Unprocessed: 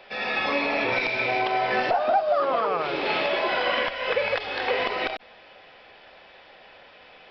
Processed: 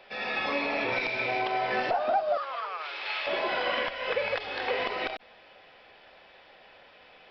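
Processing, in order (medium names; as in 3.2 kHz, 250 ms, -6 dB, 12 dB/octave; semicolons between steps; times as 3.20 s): 2.37–3.27 s: high-pass 1.2 kHz 12 dB/octave; trim -4.5 dB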